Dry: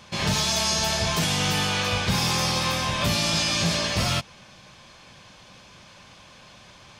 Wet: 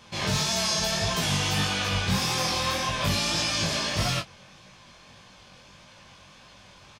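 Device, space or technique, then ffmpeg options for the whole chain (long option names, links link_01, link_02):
double-tracked vocal: -filter_complex "[0:a]asplit=2[link_01][link_02];[link_02]adelay=21,volume=-8dB[link_03];[link_01][link_03]amix=inputs=2:normalize=0,flanger=delay=16.5:depth=6.6:speed=1.7"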